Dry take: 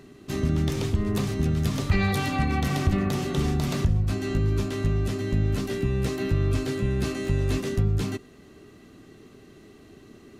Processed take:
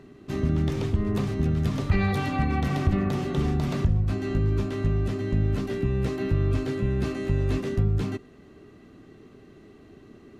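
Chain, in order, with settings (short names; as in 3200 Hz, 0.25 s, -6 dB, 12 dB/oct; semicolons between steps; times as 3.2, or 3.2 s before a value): high shelf 4000 Hz -12 dB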